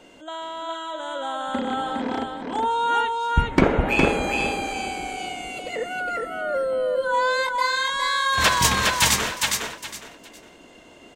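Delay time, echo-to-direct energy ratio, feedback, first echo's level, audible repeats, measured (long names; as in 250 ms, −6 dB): 411 ms, −2.5 dB, 24%, −3.0 dB, 3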